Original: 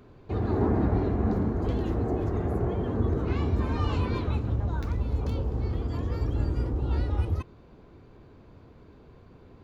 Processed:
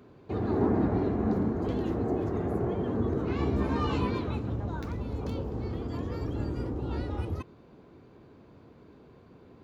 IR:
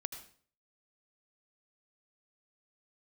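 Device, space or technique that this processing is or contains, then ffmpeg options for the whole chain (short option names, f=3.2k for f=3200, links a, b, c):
filter by subtraction: -filter_complex "[0:a]asplit=2[a][b];[b]lowpass=220,volume=-1[c];[a][c]amix=inputs=2:normalize=0,asettb=1/sr,asplit=3[d][e][f];[d]atrim=end=3.374[g];[e]atrim=start=3.37:end=4.11,asetpts=PTS-STARTPTS,afade=t=in:d=0.004:c=qsin,afade=t=out:st=0.736:d=0.004:c=qsin,asplit=2[h][i];[i]adelay=15,volume=-2.5dB[j];[h][j]amix=inputs=2:normalize=0,atrim=end_sample=32634[k];[f]atrim=start=4.106[l];[g][k]acrossfade=d=0.004:c1=hsin:c2=qsin[m];[m][l]acrossfade=d=0.004:c1=qsin:c2=hsin,volume=-1.5dB"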